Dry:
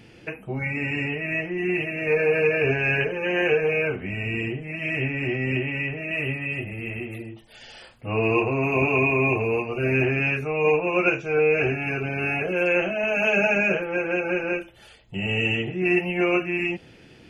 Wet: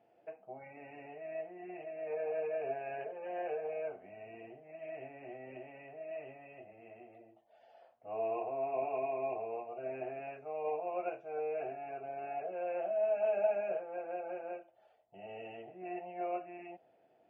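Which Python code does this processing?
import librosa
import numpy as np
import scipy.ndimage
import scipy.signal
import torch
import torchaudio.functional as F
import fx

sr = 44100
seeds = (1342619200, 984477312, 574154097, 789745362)

y = fx.bandpass_q(x, sr, hz=680.0, q=7.8)
y = y * librosa.db_to_amplitude(-1.5)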